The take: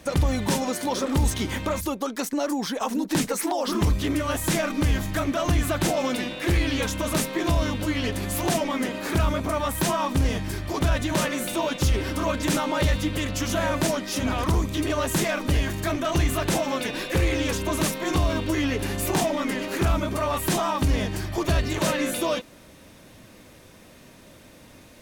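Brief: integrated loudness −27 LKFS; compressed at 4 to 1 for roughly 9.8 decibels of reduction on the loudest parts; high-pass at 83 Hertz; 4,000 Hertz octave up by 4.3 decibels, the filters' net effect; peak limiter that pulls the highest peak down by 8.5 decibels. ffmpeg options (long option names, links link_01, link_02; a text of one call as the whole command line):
ffmpeg -i in.wav -af "highpass=83,equalizer=frequency=4000:width_type=o:gain=5.5,acompressor=threshold=-31dB:ratio=4,volume=7dB,alimiter=limit=-17.5dB:level=0:latency=1" out.wav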